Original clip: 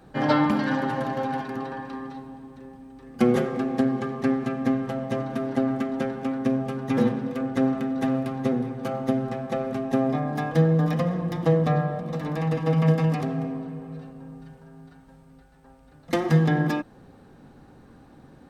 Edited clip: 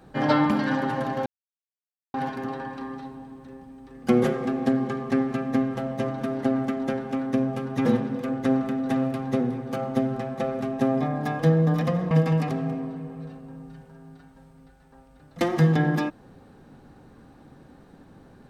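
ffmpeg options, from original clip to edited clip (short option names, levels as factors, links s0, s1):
-filter_complex "[0:a]asplit=3[s0][s1][s2];[s0]atrim=end=1.26,asetpts=PTS-STARTPTS,afade=t=out:st=1.256:d=0.004:c=hsin,apad=pad_dur=0.88[s3];[s1]atrim=start=1.26:end=11.232,asetpts=PTS-STARTPTS,afade=t=in:d=0.004:c=hsin[s4];[s2]atrim=start=12.828[s5];[s3][s4]concat=n=2:v=0:a=1[s6];[s6][s5]acrossfade=d=0.004:c1=hsin:c2=hsin"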